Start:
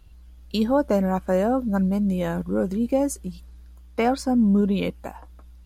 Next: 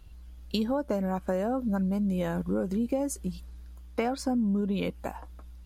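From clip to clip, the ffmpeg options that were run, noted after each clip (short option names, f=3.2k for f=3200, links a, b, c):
-af "acompressor=threshold=-25dB:ratio=6"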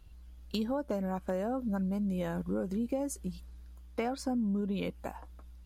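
-af "asoftclip=type=hard:threshold=-17dB,volume=-4.5dB"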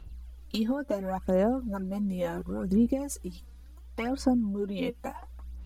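-af "aphaser=in_gain=1:out_gain=1:delay=4.2:decay=0.63:speed=0.71:type=sinusoidal,volume=1.5dB"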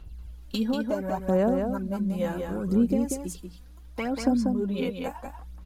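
-af "aecho=1:1:189:0.562,volume=1.5dB"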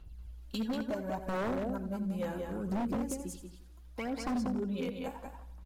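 -af "aecho=1:1:85|170|255|340|425:0.2|0.102|0.0519|0.0265|0.0135,aeval=exprs='0.0944*(abs(mod(val(0)/0.0944+3,4)-2)-1)':c=same,volume=-7dB"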